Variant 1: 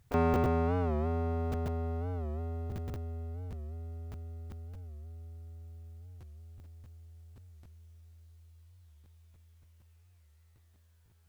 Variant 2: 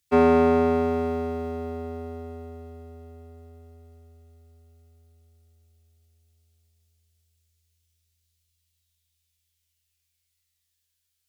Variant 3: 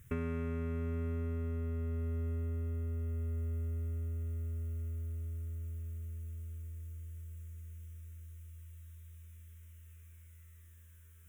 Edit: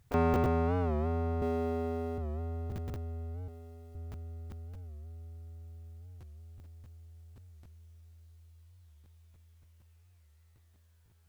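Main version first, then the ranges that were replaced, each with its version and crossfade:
1
1.42–2.18 from 2
3.48–3.95 from 2
not used: 3

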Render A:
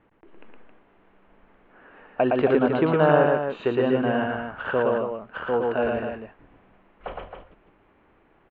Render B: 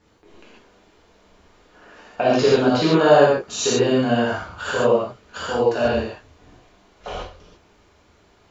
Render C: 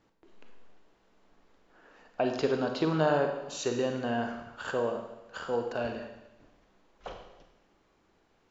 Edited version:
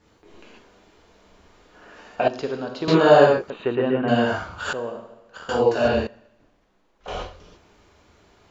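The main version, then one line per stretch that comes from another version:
B
2.28–2.88 from C
3.5–4.08 from A
4.73–5.49 from C
6.07–7.08 from C

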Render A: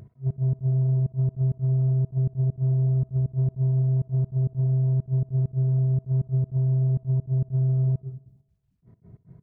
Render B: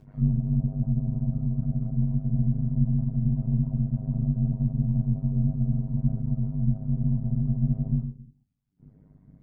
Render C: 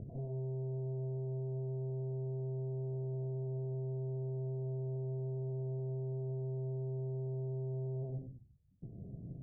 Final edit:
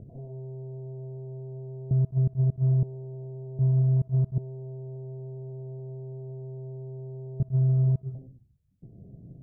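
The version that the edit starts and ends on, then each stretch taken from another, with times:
C
1.91–2.83 from A
3.59–4.38 from A
7.4–8.15 from A
not used: B

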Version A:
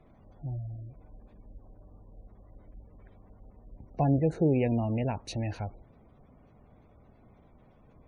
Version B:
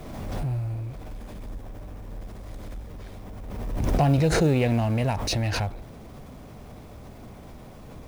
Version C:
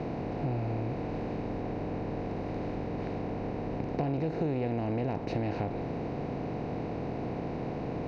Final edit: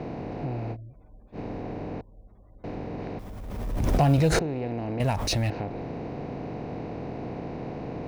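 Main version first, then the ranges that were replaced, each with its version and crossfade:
C
0.74–1.35 from A, crossfade 0.06 s
2.01–2.64 from A
3.19–4.39 from B
5–5.5 from B

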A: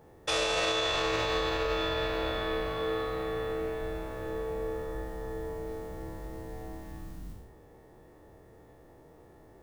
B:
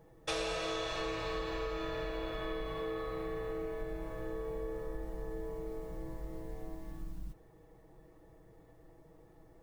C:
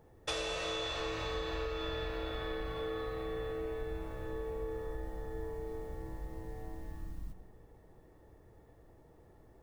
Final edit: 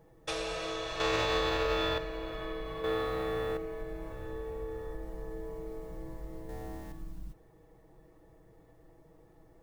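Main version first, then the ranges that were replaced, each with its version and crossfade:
B
1–1.98 from A
2.84–3.57 from A
4.12–4.94 from C
6.49–6.92 from A

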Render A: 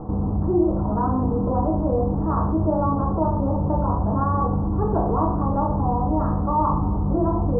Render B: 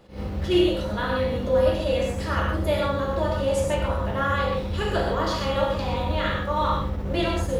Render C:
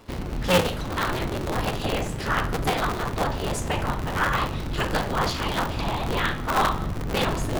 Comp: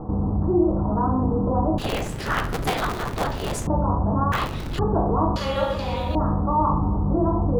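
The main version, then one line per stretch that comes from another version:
A
1.78–3.67 from C
4.32–4.79 from C
5.36–6.15 from B

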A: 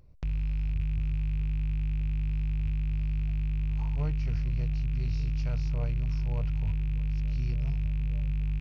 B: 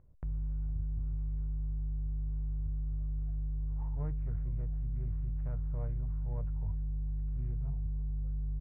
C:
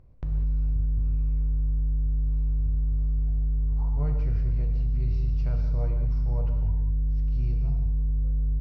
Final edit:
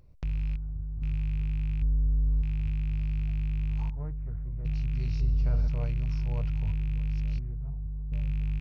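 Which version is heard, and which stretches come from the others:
A
0.56–1.02 from B
1.82–2.42 from C
3.9–4.65 from B
5.21–5.68 from C
7.39–8.12 from B

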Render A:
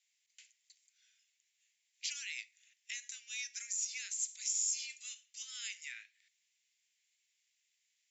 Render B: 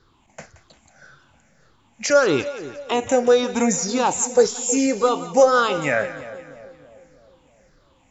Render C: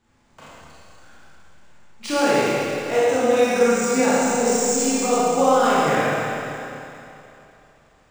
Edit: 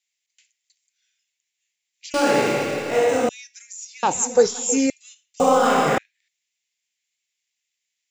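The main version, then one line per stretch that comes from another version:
A
2.14–3.29 from C
4.03–4.9 from B
5.4–5.98 from C

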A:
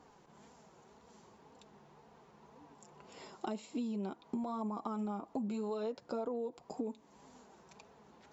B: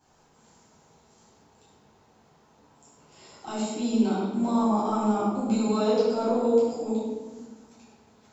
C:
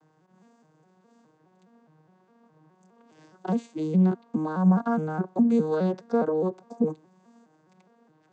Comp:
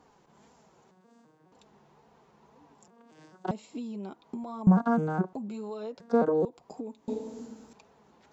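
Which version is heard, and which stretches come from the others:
A
0.91–1.52 from C
2.88–3.51 from C
4.67–5.33 from C
6–6.45 from C
7.08–7.73 from B

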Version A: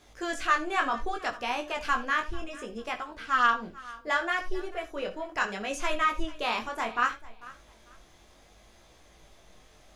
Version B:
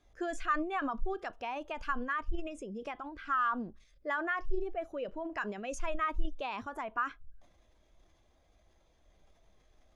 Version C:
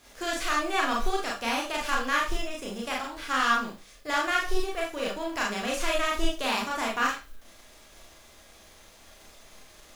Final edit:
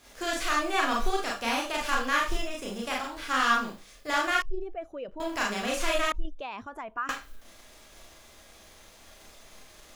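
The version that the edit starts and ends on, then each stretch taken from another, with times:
C
4.42–5.2 from B
6.12–7.09 from B
not used: A

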